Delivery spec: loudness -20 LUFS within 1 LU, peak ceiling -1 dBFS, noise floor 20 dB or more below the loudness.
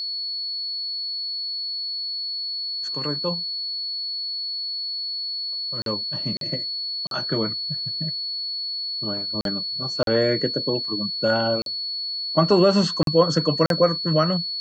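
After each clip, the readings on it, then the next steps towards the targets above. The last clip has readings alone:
dropouts 8; longest dropout 42 ms; steady tone 4400 Hz; tone level -26 dBFS; loudness -23.5 LUFS; peak -5.5 dBFS; loudness target -20.0 LUFS
-> interpolate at 5.82/6.37/7.07/9.41/10.03/11.62/13.03/13.66, 42 ms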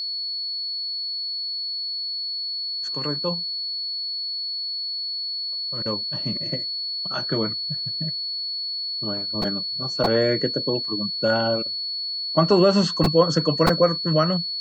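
dropouts 0; steady tone 4400 Hz; tone level -26 dBFS
-> notch 4400 Hz, Q 30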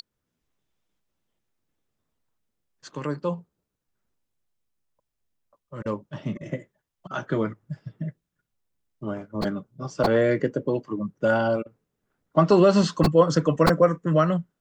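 steady tone none; loudness -23.5 LUFS; peak -5.5 dBFS; loudness target -20.0 LUFS
-> gain +3.5 dB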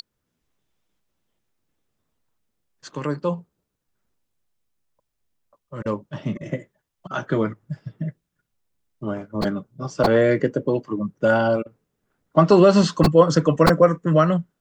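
loudness -20.0 LUFS; peak -2.0 dBFS; noise floor -79 dBFS

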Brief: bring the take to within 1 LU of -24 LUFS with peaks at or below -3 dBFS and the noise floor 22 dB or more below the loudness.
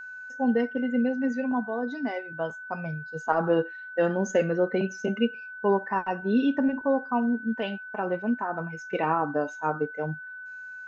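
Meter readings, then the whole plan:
steady tone 1500 Hz; tone level -38 dBFS; loudness -28.0 LUFS; peak -10.0 dBFS; loudness target -24.0 LUFS
-> notch 1500 Hz, Q 30; gain +4 dB

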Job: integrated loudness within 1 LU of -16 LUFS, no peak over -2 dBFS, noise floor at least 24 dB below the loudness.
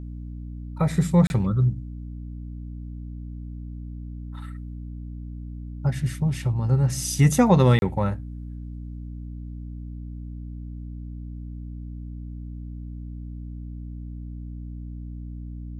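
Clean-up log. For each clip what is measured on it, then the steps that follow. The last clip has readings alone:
dropouts 2; longest dropout 31 ms; hum 60 Hz; harmonics up to 300 Hz; hum level -33 dBFS; loudness -22.0 LUFS; peak -6.0 dBFS; loudness target -16.0 LUFS
-> interpolate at 1.27/7.79, 31 ms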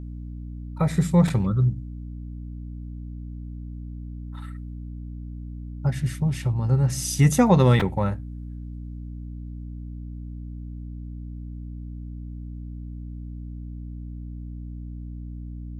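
dropouts 0; hum 60 Hz; harmonics up to 300 Hz; hum level -33 dBFS
-> de-hum 60 Hz, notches 5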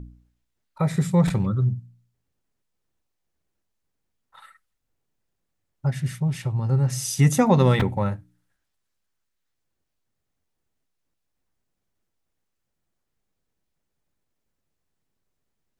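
hum none; loudness -22.5 LUFS; peak -6.0 dBFS; loudness target -16.0 LUFS
-> gain +6.5 dB; limiter -2 dBFS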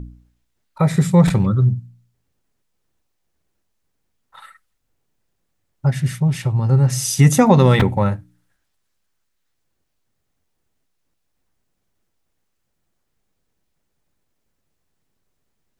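loudness -16.5 LUFS; peak -2.0 dBFS; noise floor -72 dBFS

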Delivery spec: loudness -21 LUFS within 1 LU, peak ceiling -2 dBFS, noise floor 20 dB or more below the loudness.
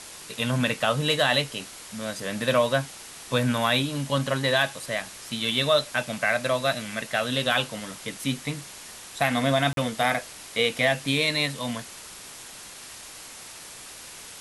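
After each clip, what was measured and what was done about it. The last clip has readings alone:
dropouts 1; longest dropout 42 ms; noise floor -43 dBFS; noise floor target -46 dBFS; loudness -25.5 LUFS; peak -8.5 dBFS; loudness target -21.0 LUFS
-> interpolate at 9.73, 42 ms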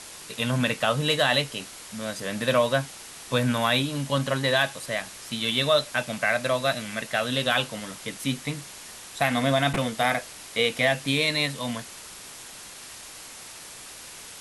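dropouts 0; noise floor -43 dBFS; noise floor target -46 dBFS
-> denoiser 6 dB, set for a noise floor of -43 dBFS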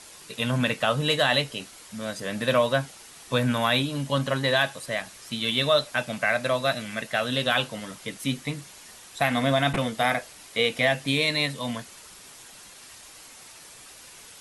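noise floor -47 dBFS; loudness -25.5 LUFS; peak -8.5 dBFS; loudness target -21.0 LUFS
-> gain +4.5 dB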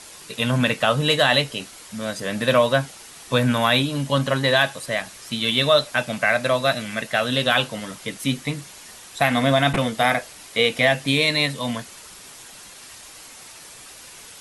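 loudness -21.0 LUFS; peak -4.0 dBFS; noise floor -43 dBFS

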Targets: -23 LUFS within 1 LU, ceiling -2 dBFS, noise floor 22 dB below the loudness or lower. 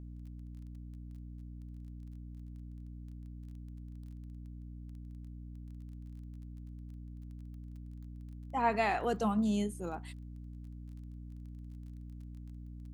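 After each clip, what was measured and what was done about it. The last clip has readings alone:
ticks 20/s; hum 60 Hz; harmonics up to 300 Hz; hum level -44 dBFS; loudness -40.5 LUFS; peak -19.0 dBFS; loudness target -23.0 LUFS
-> de-click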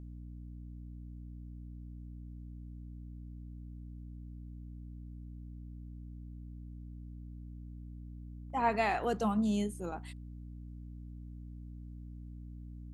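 ticks 0/s; hum 60 Hz; harmonics up to 300 Hz; hum level -44 dBFS
-> notches 60/120/180/240/300 Hz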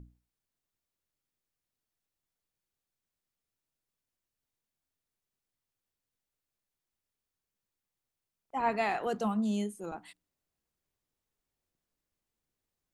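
hum none; loudness -33.0 LUFS; peak -20.0 dBFS; loudness target -23.0 LUFS
-> gain +10 dB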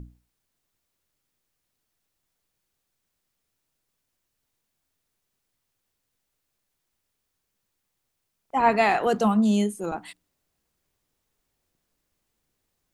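loudness -23.0 LUFS; peak -10.0 dBFS; noise floor -79 dBFS

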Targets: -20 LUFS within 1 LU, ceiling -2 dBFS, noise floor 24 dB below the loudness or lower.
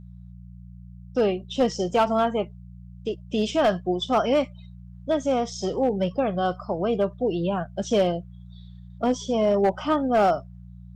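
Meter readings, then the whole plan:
clipped 0.7%; flat tops at -14.0 dBFS; hum 60 Hz; harmonics up to 180 Hz; hum level -40 dBFS; loudness -24.5 LUFS; peak -14.0 dBFS; loudness target -20.0 LUFS
-> clip repair -14 dBFS; de-hum 60 Hz, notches 3; gain +4.5 dB

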